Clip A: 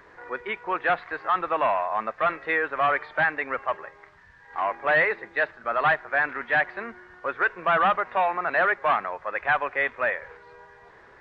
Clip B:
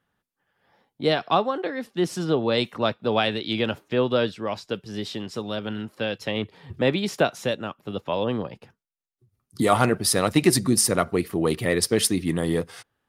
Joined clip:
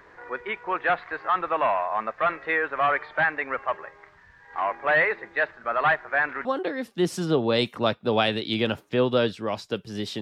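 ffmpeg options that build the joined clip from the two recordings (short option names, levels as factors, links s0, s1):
-filter_complex "[0:a]apad=whole_dur=10.21,atrim=end=10.21,atrim=end=6.452[s0];[1:a]atrim=start=1.438:end=5.2[s1];[s0][s1]acrossfade=d=0.004:c1=hsin:c2=hsin"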